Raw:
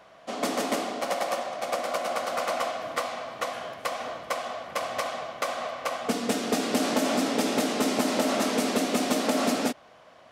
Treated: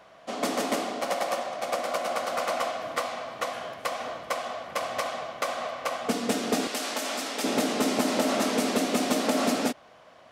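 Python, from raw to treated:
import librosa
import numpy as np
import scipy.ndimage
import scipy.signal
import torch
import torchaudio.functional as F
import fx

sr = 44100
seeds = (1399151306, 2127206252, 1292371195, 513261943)

y = fx.highpass(x, sr, hz=1200.0, slope=6, at=(6.67, 7.44))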